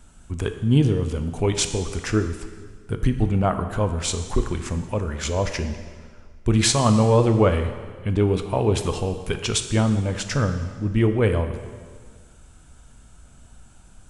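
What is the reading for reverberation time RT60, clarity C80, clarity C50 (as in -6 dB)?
1.7 s, 10.5 dB, 9.0 dB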